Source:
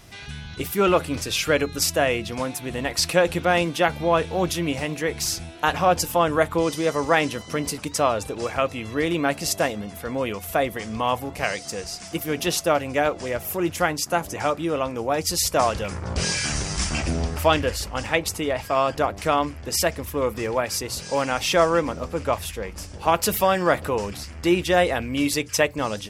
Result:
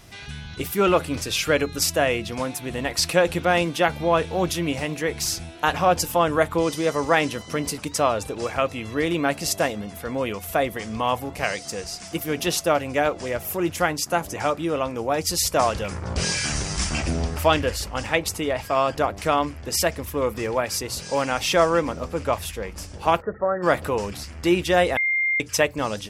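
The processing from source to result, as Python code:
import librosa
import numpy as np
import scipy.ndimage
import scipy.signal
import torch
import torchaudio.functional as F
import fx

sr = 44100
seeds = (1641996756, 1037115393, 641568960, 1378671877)

y = fx.cheby_ripple(x, sr, hz=1900.0, ripple_db=9, at=(23.2, 23.62), fade=0.02)
y = fx.edit(y, sr, fx.bleep(start_s=24.97, length_s=0.43, hz=2110.0, db=-19.0), tone=tone)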